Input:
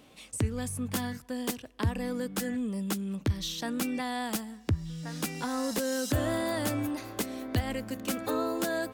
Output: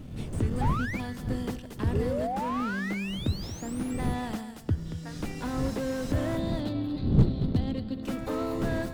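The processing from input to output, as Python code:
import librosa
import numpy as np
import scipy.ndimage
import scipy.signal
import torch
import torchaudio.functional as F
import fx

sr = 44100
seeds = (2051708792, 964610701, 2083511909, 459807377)

p1 = fx.dmg_wind(x, sr, seeds[0], corner_hz=170.0, level_db=-33.0)
p2 = fx.sample_hold(p1, sr, seeds[1], rate_hz=1600.0, jitter_pct=0)
p3 = p1 + (p2 * 10.0 ** (-10.0 / 20.0))
p4 = fx.spec_paint(p3, sr, seeds[2], shape='rise', start_s=1.93, length_s=1.98, low_hz=390.0, high_hz=11000.0, level_db=-29.0)
p5 = fx.curve_eq(p4, sr, hz=(120.0, 180.0, 2200.0, 4100.0, 6000.0), db=(0, 4, -12, 5, -24), at=(6.37, 8.03))
p6 = p5 + fx.echo_single(p5, sr, ms=230, db=-12.5, dry=0)
p7 = fx.spec_paint(p6, sr, seeds[3], shape='rise', start_s=0.61, length_s=0.39, low_hz=780.0, high_hz=2500.0, level_db=-26.0)
p8 = fx.slew_limit(p7, sr, full_power_hz=38.0)
y = p8 * 10.0 ** (-2.0 / 20.0)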